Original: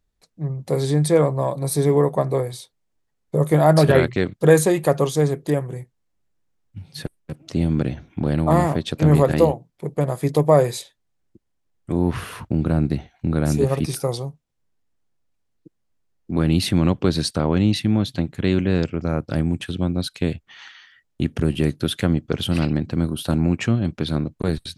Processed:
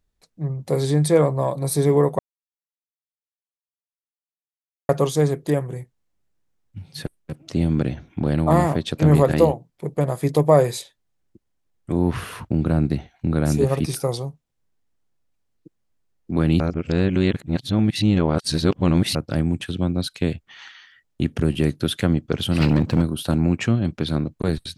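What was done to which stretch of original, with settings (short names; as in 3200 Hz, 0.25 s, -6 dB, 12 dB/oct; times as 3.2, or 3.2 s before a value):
2.19–4.89 mute
16.6–19.15 reverse
22.6–23.02 sample leveller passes 2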